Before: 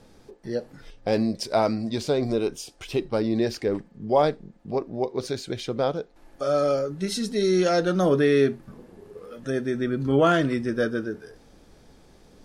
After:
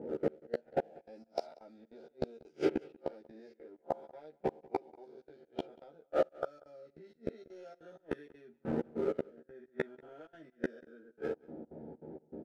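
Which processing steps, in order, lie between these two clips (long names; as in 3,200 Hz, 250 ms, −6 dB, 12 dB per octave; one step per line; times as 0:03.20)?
peak hold with a rise ahead of every peak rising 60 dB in 1.07 s
high-pass filter 260 Hz 12 dB per octave
low-pass that shuts in the quiet parts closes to 470 Hz, open at −16.5 dBFS
high-shelf EQ 3,700 Hz −5 dB
leveller curve on the samples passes 1
downward compressor 2.5 to 1, threshold −32 dBFS, peak gain reduction 13 dB
gate pattern "xx.xx..xx.x" 196 BPM −24 dB
gate with flip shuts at −30 dBFS, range −35 dB
Butterworth band-reject 1,100 Hz, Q 4
double-tracking delay 13 ms −2 dB
single-tap delay 188 ms −23.5 dB
one half of a high-frequency compander decoder only
level +10.5 dB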